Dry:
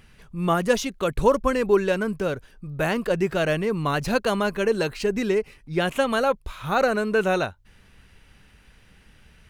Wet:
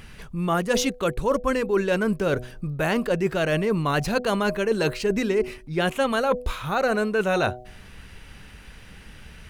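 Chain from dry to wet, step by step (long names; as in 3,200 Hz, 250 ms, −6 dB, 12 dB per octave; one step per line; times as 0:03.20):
hum removal 124 Hz, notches 6
reversed playback
downward compressor 6 to 1, threshold −29 dBFS, peak gain reduction 15.5 dB
reversed playback
level +9 dB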